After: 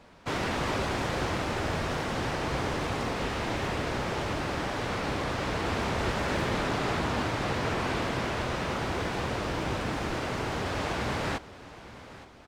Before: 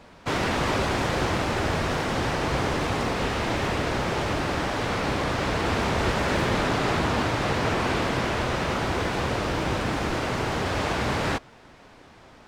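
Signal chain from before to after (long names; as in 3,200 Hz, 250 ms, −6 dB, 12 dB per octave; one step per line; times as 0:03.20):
repeating echo 869 ms, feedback 42%, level −17 dB
level −5 dB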